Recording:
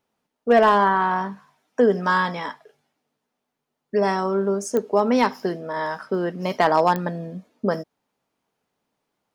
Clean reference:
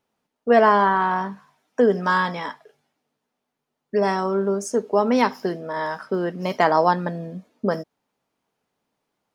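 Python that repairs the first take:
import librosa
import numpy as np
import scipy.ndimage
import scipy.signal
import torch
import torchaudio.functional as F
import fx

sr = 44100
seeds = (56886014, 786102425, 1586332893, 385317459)

y = fx.fix_declip(x, sr, threshold_db=-8.0)
y = fx.fix_declick_ar(y, sr, threshold=10.0)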